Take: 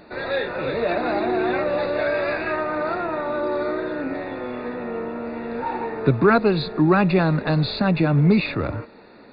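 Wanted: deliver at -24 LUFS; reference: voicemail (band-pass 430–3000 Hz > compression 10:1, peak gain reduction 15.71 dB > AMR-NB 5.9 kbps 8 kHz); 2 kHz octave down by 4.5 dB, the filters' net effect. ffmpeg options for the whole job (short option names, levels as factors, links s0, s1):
-af "highpass=430,lowpass=3000,equalizer=f=2000:t=o:g=-5.5,acompressor=threshold=0.0316:ratio=10,volume=3.98" -ar 8000 -c:a libopencore_amrnb -b:a 5900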